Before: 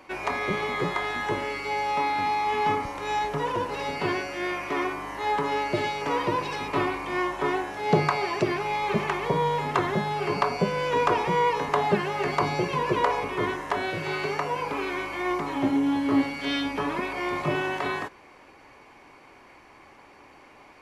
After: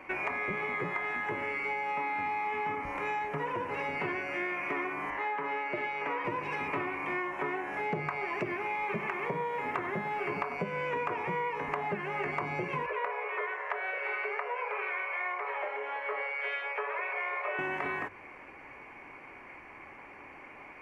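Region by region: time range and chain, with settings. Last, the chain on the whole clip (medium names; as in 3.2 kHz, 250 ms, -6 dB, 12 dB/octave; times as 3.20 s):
5.10–6.25 s: high-pass 410 Hz 6 dB/octave + peaking EQ 9.9 kHz -12.5 dB 1.2 oct + band-stop 5.3 kHz, Q 22
8.25–10.57 s: hum notches 50/100/150 Hz + bit-crushed delay 96 ms, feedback 35%, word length 7-bit, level -15 dB
12.86–17.59 s: rippled Chebyshev high-pass 410 Hz, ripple 3 dB + distance through air 160 m + overload inside the chain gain 16.5 dB
whole clip: resonant high shelf 3 kHz -9 dB, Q 3; hum notches 50/100 Hz; compression, threshold -31 dBFS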